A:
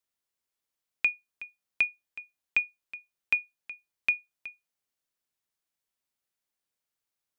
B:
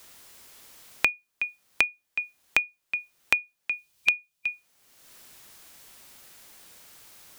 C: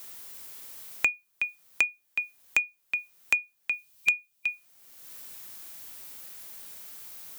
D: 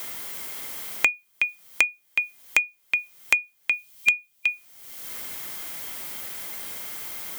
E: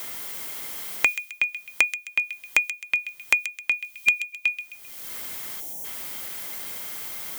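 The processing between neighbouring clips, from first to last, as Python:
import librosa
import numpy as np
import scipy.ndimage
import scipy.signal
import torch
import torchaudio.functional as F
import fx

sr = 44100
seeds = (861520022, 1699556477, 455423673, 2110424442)

y1 = fx.spec_box(x, sr, start_s=3.77, length_s=0.71, low_hz=200.0, high_hz=2400.0, gain_db=-6)
y1 = fx.band_squash(y1, sr, depth_pct=100)
y1 = y1 * librosa.db_to_amplitude(6.0)
y2 = fx.high_shelf(y1, sr, hz=11000.0, db=11.0)
y2 = 10.0 ** (-11.0 / 20.0) * np.tanh(y2 / 10.0 ** (-11.0 / 20.0))
y3 = fx.small_body(y2, sr, hz=(2100.0, 3200.0), ring_ms=45, db=11)
y3 = fx.band_squash(y3, sr, depth_pct=40)
y3 = y3 * librosa.db_to_amplitude(6.0)
y4 = fx.spec_erase(y3, sr, start_s=5.6, length_s=0.24, low_hz=940.0, high_hz=5400.0)
y4 = fx.echo_wet_highpass(y4, sr, ms=131, feedback_pct=38, hz=2700.0, wet_db=-8)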